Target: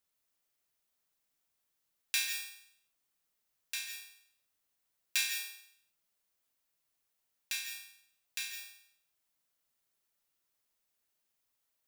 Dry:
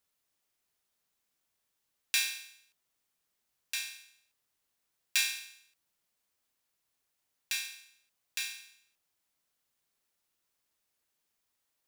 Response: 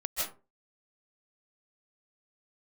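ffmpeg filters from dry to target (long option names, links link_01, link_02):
-filter_complex "[0:a]asplit=2[link_01][link_02];[1:a]atrim=start_sample=2205,highshelf=frequency=11000:gain=10[link_03];[link_02][link_03]afir=irnorm=-1:irlink=0,volume=-10dB[link_04];[link_01][link_04]amix=inputs=2:normalize=0,volume=-5.5dB"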